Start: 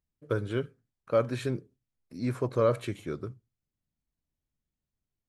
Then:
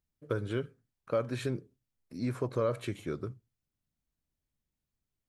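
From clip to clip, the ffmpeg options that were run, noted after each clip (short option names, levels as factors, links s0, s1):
-af "acompressor=threshold=0.0316:ratio=2"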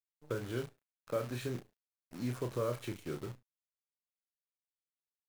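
-filter_complex "[0:a]acrusher=bits=8:dc=4:mix=0:aa=0.000001,asplit=2[s0][s1];[s1]adelay=33,volume=0.422[s2];[s0][s2]amix=inputs=2:normalize=0,volume=0.562"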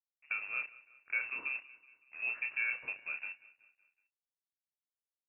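-af "aresample=8000,aeval=exprs='sgn(val(0))*max(abs(val(0))-0.00126,0)':c=same,aresample=44100,aecho=1:1:187|374|561|748:0.0944|0.0491|0.0255|0.0133,lowpass=f=2400:t=q:w=0.5098,lowpass=f=2400:t=q:w=0.6013,lowpass=f=2400:t=q:w=0.9,lowpass=f=2400:t=q:w=2.563,afreqshift=-2800"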